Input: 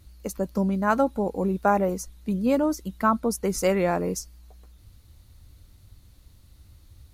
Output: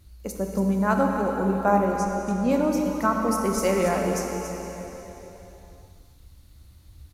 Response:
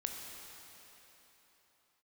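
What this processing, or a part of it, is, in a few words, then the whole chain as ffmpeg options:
cave: -filter_complex "[0:a]asettb=1/sr,asplit=3[link_01][link_02][link_03];[link_01]atrim=end=1.854[link_04];[link_02]atrim=start=1.85:end=2.51,asetpts=PTS-STARTPTS,afade=type=in:duration=0.004:curve=qsin,afade=type=out:start_time=0.656:duration=0.004:curve=qsin,lowpass=8500[link_05];[link_03]atrim=start=2.506[link_06];[link_04][link_05]acrossfade=duration=0.004:curve1=hsin:curve2=qsin[link_07];[link_07][link_06]acrossfade=duration=0.004:curve1=qsin:curve2=hsin,aecho=1:1:280:0.316[link_08];[1:a]atrim=start_sample=2205[link_09];[link_08][link_09]afir=irnorm=-1:irlink=0"

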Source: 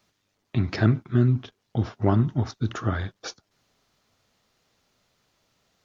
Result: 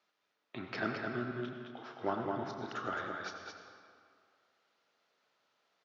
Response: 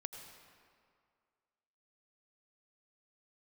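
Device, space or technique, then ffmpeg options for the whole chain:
station announcement: -filter_complex "[0:a]asettb=1/sr,asplit=3[link_01][link_02][link_03];[link_01]atrim=end=1.314[link_04];[link_02]atrim=start=1.31:end=1.96,asetpts=PTS-STARTPTS,afade=type=in:duration=0.004:curve=qsin,afade=type=out:start_time=0.646:duration=0.004:curve=qsin,highpass=680[link_05];[link_03]atrim=start=1.956[link_06];[link_04][link_05]acrossfade=duration=0.004:curve1=hsin:curve2=qsin[link_07];[link_07][link_06]acrossfade=duration=0.004:curve1=qsin:curve2=hsin,highpass=390,lowpass=4300,equalizer=frequency=1400:width_type=o:width=0.39:gain=4.5,aecho=1:1:32.07|215.7:0.251|0.562[link_08];[1:a]atrim=start_sample=2205[link_09];[link_08][link_09]afir=irnorm=-1:irlink=0,volume=-4.5dB"

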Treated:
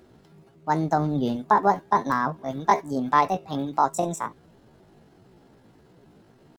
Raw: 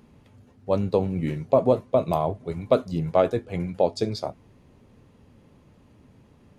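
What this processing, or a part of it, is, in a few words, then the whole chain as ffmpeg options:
chipmunk voice: -filter_complex "[0:a]asettb=1/sr,asplit=3[link_01][link_02][link_03];[link_01]atrim=end=0.724[link_04];[link_02]atrim=start=0.72:end=1.37,asetpts=PTS-STARTPTS,afade=type=in:duration=0.004:curve=qsin,afade=type=out:start_time=0.646:duration=0.004:curve=qsin,asubboost=boost=8.5:cutoff=180[link_05];[link_03]atrim=start=1.366[link_06];[link_04][link_05]acrossfade=duration=0.004:curve1=hsin:curve2=qsin[link_07];[link_07][link_06]acrossfade=duration=0.004:curve1=qsin:curve2=hsin,asetrate=70004,aresample=44100,atempo=0.629961"

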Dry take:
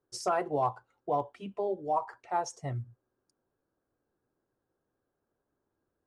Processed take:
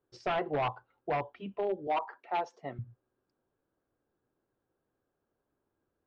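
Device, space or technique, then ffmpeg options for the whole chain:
synthesiser wavefolder: -filter_complex "[0:a]aeval=exprs='0.0631*(abs(mod(val(0)/0.0631+3,4)-2)-1)':channel_layout=same,lowpass=frequency=3700:width=0.5412,lowpass=frequency=3700:width=1.3066,asettb=1/sr,asplit=3[link_01][link_02][link_03];[link_01]atrim=end=1.874[link_04];[link_02]atrim=start=1.87:end=2.79,asetpts=PTS-STARTPTS,afade=type=in:duration=0.004:curve=qsin,afade=type=out:start_time=0.916:duration=0.004:curve=qsin,highpass=frequency=200:width=0.5412,highpass=frequency=200:width=1.3066[link_05];[link_03]atrim=start=2.786[link_06];[link_04][link_05]acrossfade=duration=0.004:curve1=hsin:curve2=qsin[link_07];[link_07][link_06]acrossfade=duration=0.004:curve1=qsin:curve2=hsin"

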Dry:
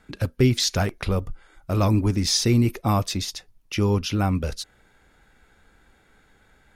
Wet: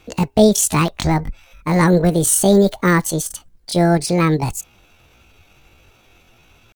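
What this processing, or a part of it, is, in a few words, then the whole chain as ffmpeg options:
chipmunk voice: -af "asetrate=74167,aresample=44100,atempo=0.594604,volume=6.5dB"

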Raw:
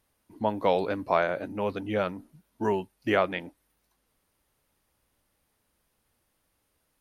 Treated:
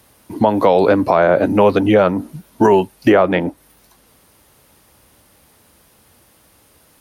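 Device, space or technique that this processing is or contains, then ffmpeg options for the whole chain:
mastering chain: -filter_complex "[0:a]highpass=59,equalizer=frequency=1900:width_type=o:width=1.6:gain=-2,acrossover=split=310|1500[link_01][link_02][link_03];[link_01]acompressor=threshold=-39dB:ratio=4[link_04];[link_02]acompressor=threshold=-26dB:ratio=4[link_05];[link_03]acompressor=threshold=-48dB:ratio=4[link_06];[link_04][link_05][link_06]amix=inputs=3:normalize=0,acompressor=threshold=-34dB:ratio=1.5,alimiter=level_in=23.5dB:limit=-1dB:release=50:level=0:latency=1,volume=-1dB"

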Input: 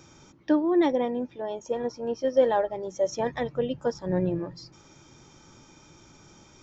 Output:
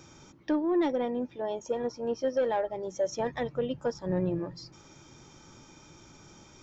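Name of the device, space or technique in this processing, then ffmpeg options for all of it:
soft clipper into limiter: -af "asoftclip=type=tanh:threshold=-15dB,alimiter=limit=-20.5dB:level=0:latency=1:release=497"

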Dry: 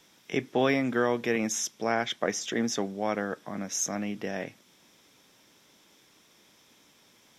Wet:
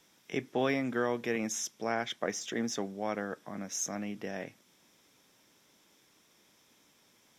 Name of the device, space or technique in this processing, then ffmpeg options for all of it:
exciter from parts: -filter_complex "[0:a]asplit=2[link_01][link_02];[link_02]highpass=2600,asoftclip=type=tanh:threshold=-39dB,highpass=3500,volume=-11dB[link_03];[link_01][link_03]amix=inputs=2:normalize=0,volume=-5dB"

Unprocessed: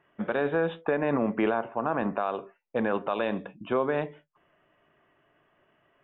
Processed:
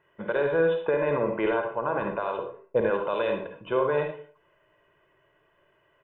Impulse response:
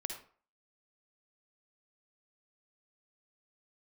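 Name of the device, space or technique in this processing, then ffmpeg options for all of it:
microphone above a desk: -filter_complex "[0:a]asettb=1/sr,asplit=3[link_01][link_02][link_03];[link_01]atrim=end=2.384[link_04];[link_02]atrim=start=2.38:end=2.81,asetpts=PTS-STARTPTS,afade=type=in:duration=0.004:curve=qsin,afade=type=out:start_time=0.426:duration=0.004:curve=qsin,tiltshelf=frequency=1200:gain=6[link_05];[link_03]atrim=start=2.806[link_06];[link_04][link_05]acrossfade=duration=0.004:curve1=hsin:curve2=qsin[link_07];[link_07][link_06]acrossfade=duration=0.004:curve1=qsin:curve2=hsin,aecho=1:1:2:0.63[link_08];[1:a]atrim=start_sample=2205[link_09];[link_08][link_09]afir=irnorm=-1:irlink=0"

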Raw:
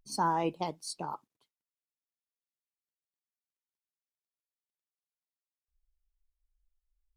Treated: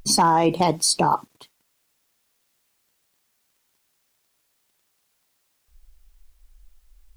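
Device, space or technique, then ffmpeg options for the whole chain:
loud club master: -af "acompressor=threshold=-31dB:ratio=3,asoftclip=type=hard:threshold=-25.5dB,alimiter=level_in=34.5dB:limit=-1dB:release=50:level=0:latency=1,volume=-8.5dB"

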